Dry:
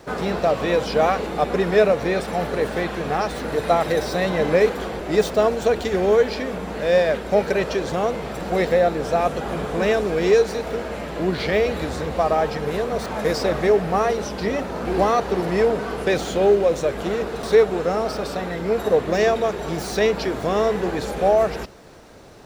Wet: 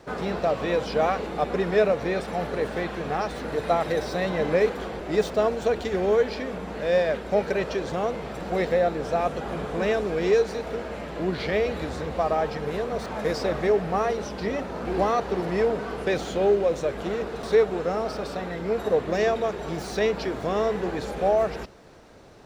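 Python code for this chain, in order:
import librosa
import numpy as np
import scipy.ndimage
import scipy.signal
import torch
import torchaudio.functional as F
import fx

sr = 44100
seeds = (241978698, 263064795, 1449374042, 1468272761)

y = fx.high_shelf(x, sr, hz=8400.0, db=-8.0)
y = y * 10.0 ** (-4.5 / 20.0)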